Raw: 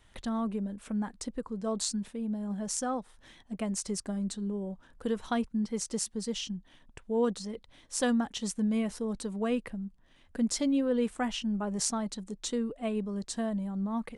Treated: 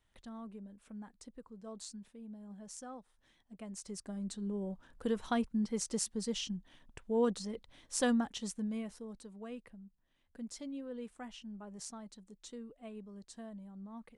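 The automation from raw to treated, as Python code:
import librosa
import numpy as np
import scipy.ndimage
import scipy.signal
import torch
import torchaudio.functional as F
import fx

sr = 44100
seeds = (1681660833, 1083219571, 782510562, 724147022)

y = fx.gain(x, sr, db=fx.line((3.52, -15.0), (4.63, -2.5), (8.11, -2.5), (9.29, -15.5)))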